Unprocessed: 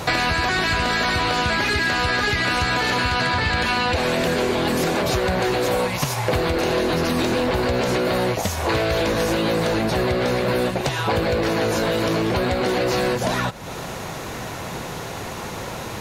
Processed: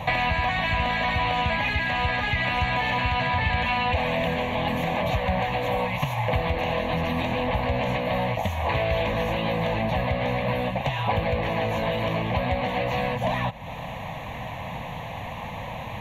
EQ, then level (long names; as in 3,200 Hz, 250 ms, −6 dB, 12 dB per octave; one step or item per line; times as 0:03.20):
moving average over 5 samples
phaser with its sweep stopped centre 1,400 Hz, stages 6
0.0 dB